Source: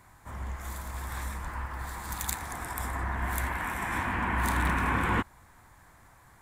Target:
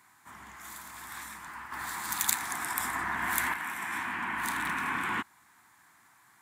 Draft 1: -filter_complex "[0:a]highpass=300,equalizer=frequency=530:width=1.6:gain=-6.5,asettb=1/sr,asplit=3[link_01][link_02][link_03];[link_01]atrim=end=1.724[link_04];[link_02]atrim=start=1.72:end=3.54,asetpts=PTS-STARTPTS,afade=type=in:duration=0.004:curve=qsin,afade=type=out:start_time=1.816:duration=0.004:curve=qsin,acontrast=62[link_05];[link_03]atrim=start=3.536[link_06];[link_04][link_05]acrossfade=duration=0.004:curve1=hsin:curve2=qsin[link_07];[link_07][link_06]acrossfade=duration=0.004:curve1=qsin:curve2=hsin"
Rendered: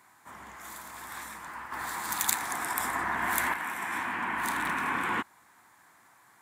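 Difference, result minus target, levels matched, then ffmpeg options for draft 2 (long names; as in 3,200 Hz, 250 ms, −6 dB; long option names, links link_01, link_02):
500 Hz band +5.0 dB
-filter_complex "[0:a]highpass=300,equalizer=frequency=530:width=1.6:gain=-17,asettb=1/sr,asplit=3[link_01][link_02][link_03];[link_01]atrim=end=1.724[link_04];[link_02]atrim=start=1.72:end=3.54,asetpts=PTS-STARTPTS,afade=type=in:duration=0.004:curve=qsin,afade=type=out:start_time=1.816:duration=0.004:curve=qsin,acontrast=62[link_05];[link_03]atrim=start=3.536[link_06];[link_04][link_05]acrossfade=duration=0.004:curve1=hsin:curve2=qsin[link_07];[link_07][link_06]acrossfade=duration=0.004:curve1=qsin:curve2=hsin"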